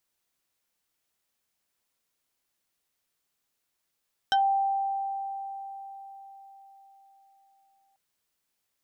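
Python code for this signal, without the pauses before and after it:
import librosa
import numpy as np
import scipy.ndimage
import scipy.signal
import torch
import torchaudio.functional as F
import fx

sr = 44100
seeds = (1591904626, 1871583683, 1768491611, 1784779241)

y = fx.fm2(sr, length_s=3.64, level_db=-19.0, carrier_hz=785.0, ratio=2.96, index=1.6, index_s=0.13, decay_s=4.58, shape='exponential')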